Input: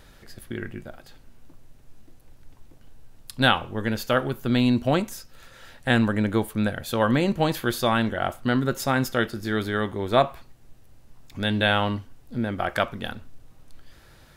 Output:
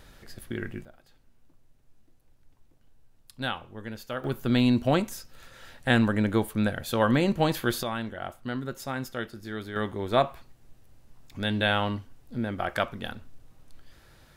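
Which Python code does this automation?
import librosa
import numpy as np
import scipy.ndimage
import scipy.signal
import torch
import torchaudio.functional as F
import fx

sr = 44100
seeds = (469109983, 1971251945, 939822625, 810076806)

y = fx.gain(x, sr, db=fx.steps((0.0, -1.0), (0.85, -12.0), (4.24, -1.5), (7.83, -10.0), (9.76, -3.5)))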